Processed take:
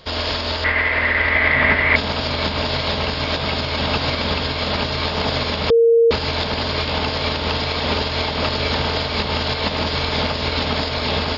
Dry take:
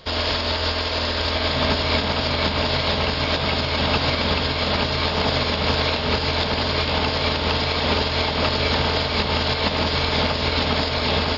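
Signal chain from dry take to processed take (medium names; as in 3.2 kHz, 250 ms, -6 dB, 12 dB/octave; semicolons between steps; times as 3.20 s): 0.64–1.96 s: resonant low-pass 2 kHz, resonance Q 12; 5.70–6.11 s: bleep 462 Hz -9.5 dBFS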